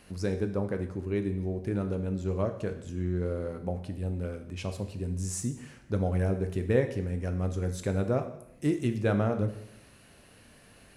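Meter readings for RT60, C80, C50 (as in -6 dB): 0.80 s, 13.0 dB, 10.5 dB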